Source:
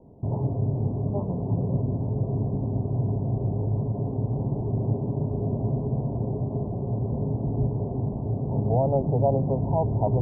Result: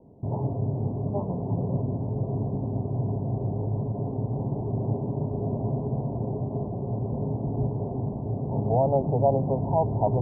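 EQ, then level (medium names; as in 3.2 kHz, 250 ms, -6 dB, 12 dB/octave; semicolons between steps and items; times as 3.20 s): bass shelf 70 Hz -8.5 dB; dynamic bell 870 Hz, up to +5 dB, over -41 dBFS, Q 1.2; distance through air 430 m; 0.0 dB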